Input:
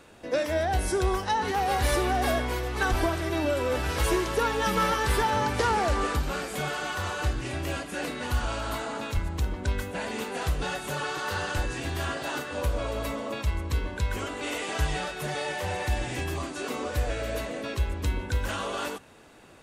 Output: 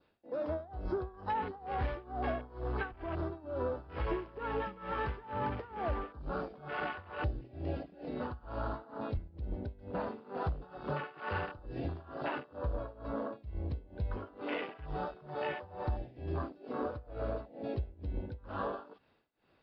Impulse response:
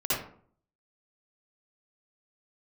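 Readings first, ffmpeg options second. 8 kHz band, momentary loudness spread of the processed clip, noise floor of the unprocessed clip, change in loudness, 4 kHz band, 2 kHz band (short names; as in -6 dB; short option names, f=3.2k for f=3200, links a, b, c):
under -40 dB, 4 LU, -39 dBFS, -10.0 dB, -19.5 dB, -13.0 dB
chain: -af "afwtdn=0.0282,adynamicequalizer=threshold=0.00501:dfrequency=2200:dqfactor=1.5:tfrequency=2200:tqfactor=1.5:attack=5:release=100:ratio=0.375:range=2.5:mode=cutabove:tftype=bell,acompressor=threshold=-30dB:ratio=6,tremolo=f=2.2:d=0.91,aresample=11025,aresample=44100"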